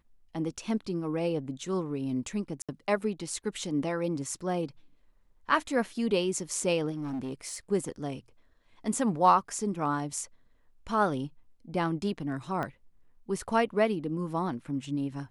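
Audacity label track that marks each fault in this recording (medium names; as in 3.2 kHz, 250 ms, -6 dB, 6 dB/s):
2.620000	2.690000	dropout 66 ms
6.910000	7.570000	clipped -30.5 dBFS
12.630000	12.630000	pop -21 dBFS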